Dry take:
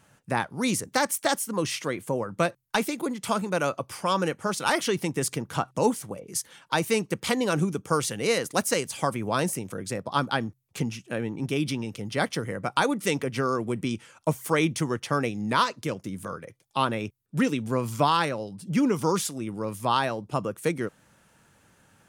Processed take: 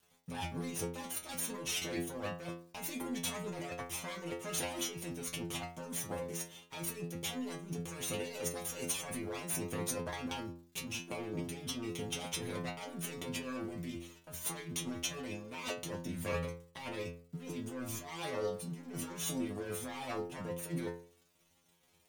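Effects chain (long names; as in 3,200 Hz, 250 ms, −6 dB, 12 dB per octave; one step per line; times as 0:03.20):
lower of the sound and its delayed copy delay 0.31 ms
high-pass filter 60 Hz 12 dB per octave
compressor whose output falls as the input rises −35 dBFS, ratio −1
surface crackle 230 per second −48 dBFS
dead-zone distortion −52.5 dBFS
stiff-string resonator 84 Hz, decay 0.52 s, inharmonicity 0.002
level +7.5 dB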